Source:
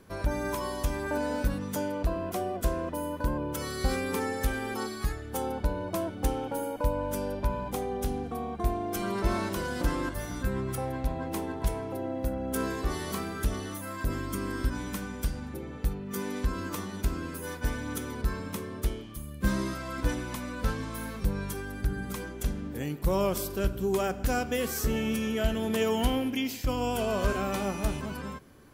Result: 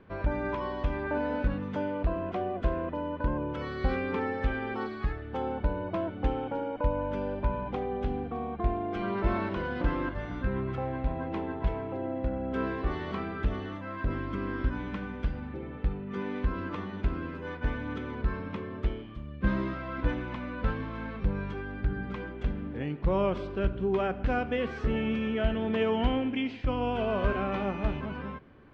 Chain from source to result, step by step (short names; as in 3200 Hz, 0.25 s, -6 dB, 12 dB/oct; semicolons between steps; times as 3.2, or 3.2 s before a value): LPF 3000 Hz 24 dB/oct